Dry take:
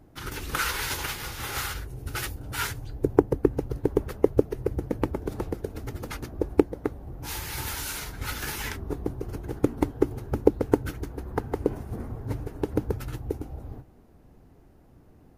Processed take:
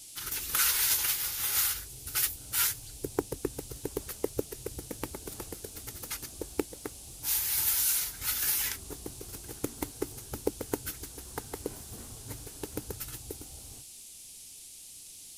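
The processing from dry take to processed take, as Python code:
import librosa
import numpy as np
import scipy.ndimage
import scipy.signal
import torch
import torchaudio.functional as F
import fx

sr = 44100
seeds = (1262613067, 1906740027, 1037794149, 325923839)

y = fx.dmg_noise_band(x, sr, seeds[0], low_hz=2300.0, high_hz=11000.0, level_db=-55.0)
y = scipy.signal.lfilter([1.0, -0.9], [1.0], y)
y = F.gain(torch.from_numpy(y), 7.0).numpy()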